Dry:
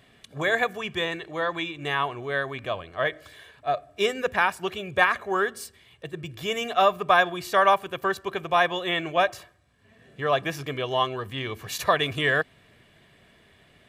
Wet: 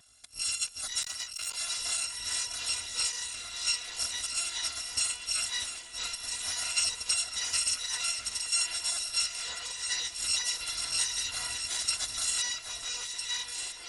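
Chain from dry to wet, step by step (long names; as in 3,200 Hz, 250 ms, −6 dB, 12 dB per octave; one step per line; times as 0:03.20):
samples in bit-reversed order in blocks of 256 samples
high-shelf EQ 3,200 Hz +10.5 dB
downward compressor 2.5 to 1, threshold −20 dBFS, peak gain reduction 10.5 dB
downsampling to 22,050 Hz
on a send: delay that swaps between a low-pass and a high-pass 652 ms, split 2,100 Hz, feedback 70%, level −5 dB
on the sum: delay with pitch and tempo change per echo 331 ms, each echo −6 semitones, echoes 3, each echo −6 dB
0:01.02–0:01.57: saturating transformer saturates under 3,500 Hz
level −6.5 dB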